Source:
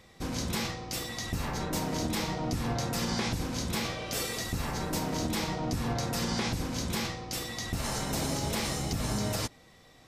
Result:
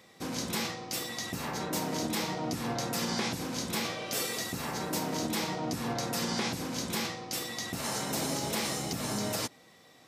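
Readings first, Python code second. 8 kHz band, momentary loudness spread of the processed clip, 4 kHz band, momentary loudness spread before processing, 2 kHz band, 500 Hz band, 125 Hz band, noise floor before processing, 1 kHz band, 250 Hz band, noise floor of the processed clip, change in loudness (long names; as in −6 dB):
+1.0 dB, 4 LU, +0.5 dB, 4 LU, 0.0 dB, 0.0 dB, −6.0 dB, −57 dBFS, 0.0 dB, −1.0 dB, −58 dBFS, −0.5 dB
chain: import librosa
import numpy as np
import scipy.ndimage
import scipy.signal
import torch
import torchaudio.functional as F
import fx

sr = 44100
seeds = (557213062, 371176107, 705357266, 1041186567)

y = scipy.signal.sosfilt(scipy.signal.butter(2, 170.0, 'highpass', fs=sr, output='sos'), x)
y = fx.high_shelf(y, sr, hz=12000.0, db=4.5)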